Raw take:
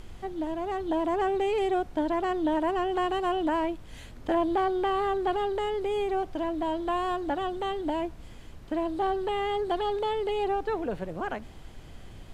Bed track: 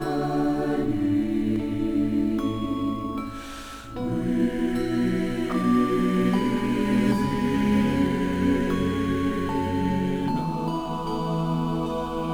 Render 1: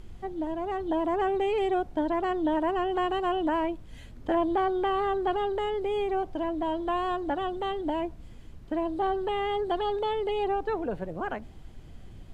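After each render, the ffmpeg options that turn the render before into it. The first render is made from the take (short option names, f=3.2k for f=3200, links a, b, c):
-af "afftdn=nr=7:nf=-46"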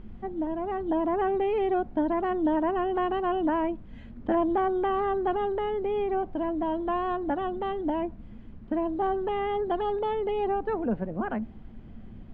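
-af "lowpass=2.2k,equalizer=f=220:w=3.7:g=13.5"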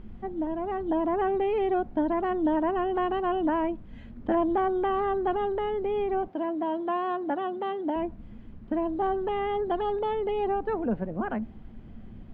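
-filter_complex "[0:a]asettb=1/sr,asplit=3[a][b][c];[a]atrim=end=6.284[d];[b]atrim=start=6.28:end=7.96,asetpts=PTS-STARTPTS,afade=t=in:d=0.004:c=qsin,afade=t=out:st=1.676:d=0.004:c=qsin,highpass=230[e];[c]atrim=start=7.956[f];[d][e]acrossfade=d=0.004:c1=hsin:c2=qsin[g];[g][f]acrossfade=d=0.004:c1=qsin:c2=hsin"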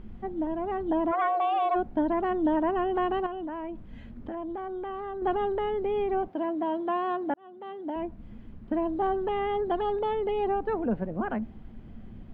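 -filter_complex "[0:a]asplit=3[a][b][c];[a]afade=t=out:st=1.11:d=0.02[d];[b]afreqshift=330,afade=t=in:st=1.11:d=0.02,afade=t=out:st=1.74:d=0.02[e];[c]afade=t=in:st=1.74:d=0.02[f];[d][e][f]amix=inputs=3:normalize=0,asettb=1/sr,asplit=3[g][h][i];[g]atrim=end=3.264[j];[h]atrim=start=3.26:end=5.22,asetpts=PTS-STARTPTS,afade=t=in:d=0.004:c=qsin,afade=t=out:st=1.956:d=0.004:c=qsin,acompressor=threshold=-32dB:ratio=12:attack=3.2:release=140:knee=1:detection=peak[k];[i]atrim=start=5.216[l];[j][k]acrossfade=d=0.004:c1=hsin:c2=qsin[m];[m][l]acrossfade=d=0.004:c1=qsin:c2=hsin,asplit=2[n][o];[n]atrim=end=7.34,asetpts=PTS-STARTPTS,afade=t=out:st=7.336:d=0.004:c=hsin[p];[o]atrim=start=7.34,asetpts=PTS-STARTPTS,afade=t=in:d=0.97[q];[p][q]concat=n=2:v=0:a=1"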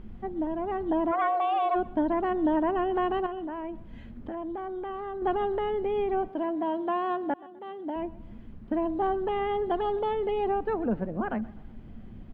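-af "aecho=1:1:126|252|378:0.0891|0.041|0.0189"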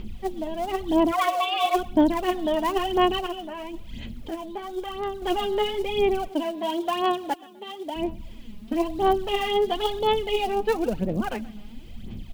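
-af "aphaser=in_gain=1:out_gain=1:delay=4.9:decay=0.62:speed=0.99:type=sinusoidal,aexciter=amount=7.2:drive=5:freq=2.4k"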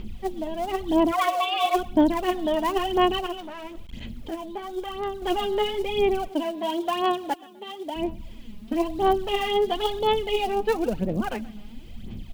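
-filter_complex "[0:a]asettb=1/sr,asplit=3[a][b][c];[a]atrim=end=3.374[d];[b]atrim=start=3.37:end=4.01,asetpts=PTS-STARTPTS,afade=t=in:d=0.004:c=qsin,afade=t=out:st=0.636:d=0.004:c=qsin,aeval=exprs='clip(val(0),-1,0.00841)':c=same[e];[c]atrim=start=4.006[f];[d][e]acrossfade=d=0.004:c1=hsin:c2=qsin[g];[g][f]acrossfade=d=0.004:c1=qsin:c2=hsin"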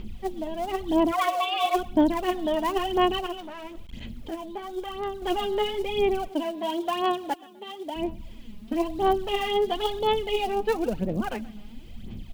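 -af "volume=-1.5dB"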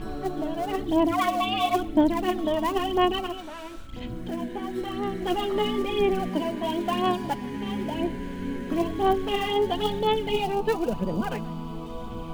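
-filter_complex "[1:a]volume=-10dB[a];[0:a][a]amix=inputs=2:normalize=0"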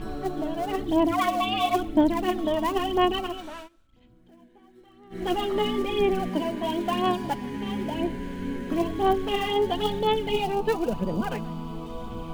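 -filter_complex "[0:a]asplit=3[a][b][c];[a]atrim=end=3.69,asetpts=PTS-STARTPTS,afade=t=out:st=3.55:d=0.14:c=qsin:silence=0.0749894[d];[b]atrim=start=3.69:end=5.1,asetpts=PTS-STARTPTS,volume=-22.5dB[e];[c]atrim=start=5.1,asetpts=PTS-STARTPTS,afade=t=in:d=0.14:c=qsin:silence=0.0749894[f];[d][e][f]concat=n=3:v=0:a=1"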